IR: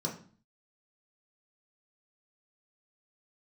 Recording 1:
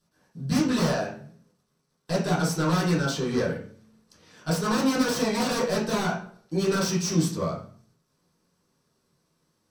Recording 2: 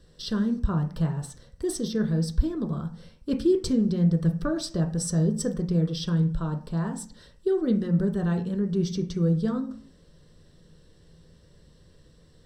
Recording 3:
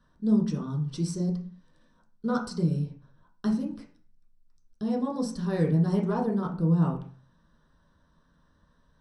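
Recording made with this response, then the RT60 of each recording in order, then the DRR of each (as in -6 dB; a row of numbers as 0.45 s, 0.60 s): 3; 0.45 s, 0.45 s, 0.45 s; -9.5 dB, 3.5 dB, -2.0 dB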